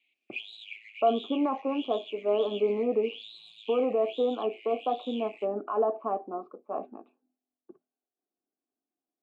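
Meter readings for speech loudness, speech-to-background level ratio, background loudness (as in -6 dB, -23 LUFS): -29.5 LUFS, 14.5 dB, -44.0 LUFS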